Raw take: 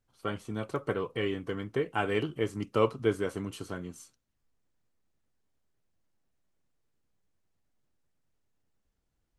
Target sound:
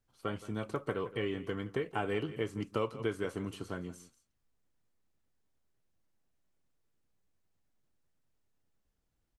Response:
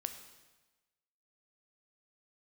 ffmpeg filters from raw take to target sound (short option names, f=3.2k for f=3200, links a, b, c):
-filter_complex "[0:a]asplit=2[a][b];[b]adelay=169.1,volume=-18dB,highshelf=f=4k:g=-3.8[c];[a][c]amix=inputs=2:normalize=0,acrossover=split=1000|3400[d][e][f];[d]acompressor=threshold=-29dB:ratio=4[g];[e]acompressor=threshold=-39dB:ratio=4[h];[f]acompressor=threshold=-54dB:ratio=4[i];[g][h][i]amix=inputs=3:normalize=0,volume=-1.5dB"